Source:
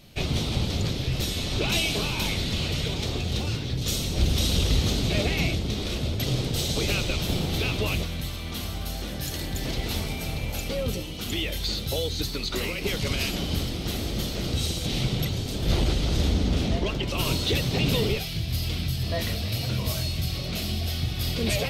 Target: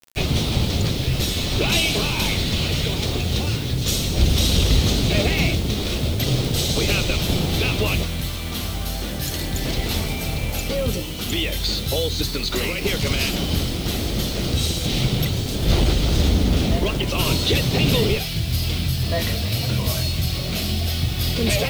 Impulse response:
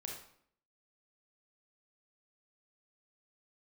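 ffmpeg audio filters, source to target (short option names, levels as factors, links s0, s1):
-af "acrusher=bits=6:mix=0:aa=0.000001,volume=1.88"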